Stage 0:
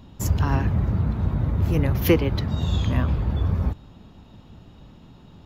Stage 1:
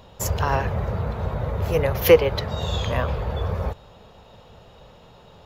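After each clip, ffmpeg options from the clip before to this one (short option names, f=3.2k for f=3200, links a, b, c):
-af "lowshelf=f=380:t=q:w=3:g=-8,volume=4.5dB"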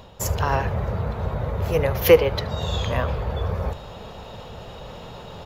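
-af "areverse,acompressor=mode=upward:threshold=-27dB:ratio=2.5,areverse,aecho=1:1:75:0.106"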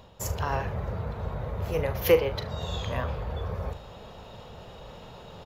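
-filter_complex "[0:a]asplit=2[a][b];[b]adelay=39,volume=-11dB[c];[a][c]amix=inputs=2:normalize=0,volume=-7dB"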